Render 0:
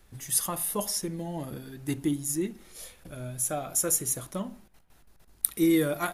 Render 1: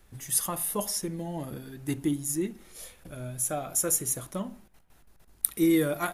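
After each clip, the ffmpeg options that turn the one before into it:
-af "equalizer=f=4.5k:w=1.5:g=-2"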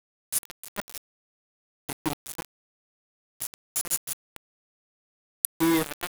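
-af "aeval=exprs='val(0)*gte(abs(val(0)),0.0794)':c=same"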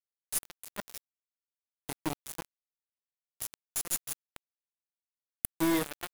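-af "aeval=exprs='(tanh(4.47*val(0)+0.55)-tanh(0.55))/4.47':c=same,volume=-2dB"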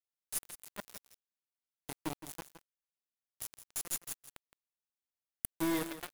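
-af "aecho=1:1:166:0.237,volume=-5dB"

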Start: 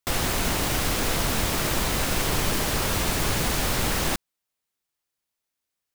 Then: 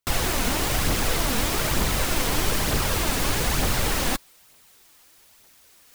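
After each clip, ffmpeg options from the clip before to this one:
-af "areverse,acompressor=mode=upward:threshold=-32dB:ratio=2.5,areverse,aphaser=in_gain=1:out_gain=1:delay=4.3:decay=0.37:speed=1.1:type=triangular"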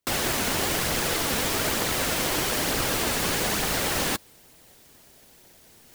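-filter_complex "[0:a]highpass=f=620:p=1,asplit=2[a][b];[b]acrusher=samples=34:mix=1:aa=0.000001,volume=-5dB[c];[a][c]amix=inputs=2:normalize=0"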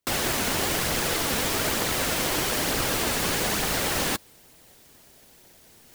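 -af anull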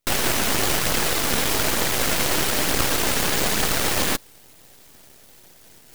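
-af "aeval=exprs='max(val(0),0)':c=same,volume=8dB"

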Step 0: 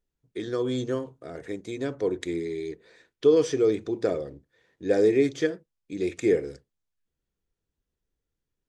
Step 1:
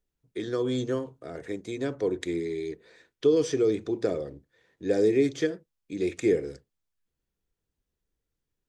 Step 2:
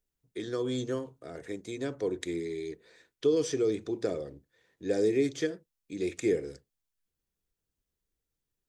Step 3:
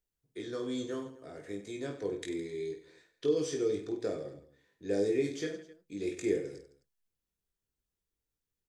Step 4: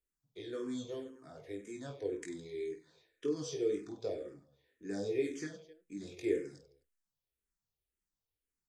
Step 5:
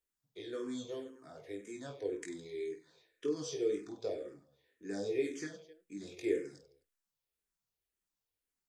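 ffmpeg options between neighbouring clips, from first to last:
-filter_complex "[0:a]acrossover=split=430|3000[a][b][c];[b]acompressor=threshold=-28dB:ratio=6[d];[a][d][c]amix=inputs=3:normalize=0"
-af "highshelf=f=4.9k:g=6.5,volume=-4dB"
-af "aecho=1:1:20|50|95|162.5|263.8:0.631|0.398|0.251|0.158|0.1,volume=-5.5dB"
-filter_complex "[0:a]asplit=2[a][b];[b]afreqshift=-1.9[c];[a][c]amix=inputs=2:normalize=1,volume=-1.5dB"
-af "lowshelf=f=170:g=-7.5,volume=1dB"

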